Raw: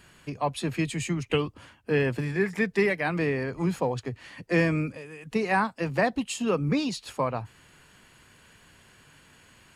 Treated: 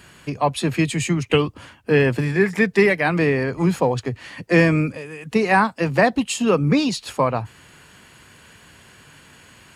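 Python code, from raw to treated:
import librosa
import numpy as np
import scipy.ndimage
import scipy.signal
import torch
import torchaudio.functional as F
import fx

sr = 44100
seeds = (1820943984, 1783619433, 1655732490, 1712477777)

y = scipy.signal.sosfilt(scipy.signal.butter(2, 48.0, 'highpass', fs=sr, output='sos'), x)
y = F.gain(torch.from_numpy(y), 8.0).numpy()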